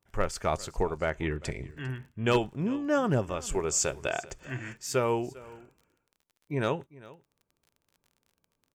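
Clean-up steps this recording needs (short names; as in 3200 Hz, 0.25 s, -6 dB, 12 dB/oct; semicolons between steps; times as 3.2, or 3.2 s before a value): clip repair -16 dBFS; de-click; inverse comb 0.399 s -20.5 dB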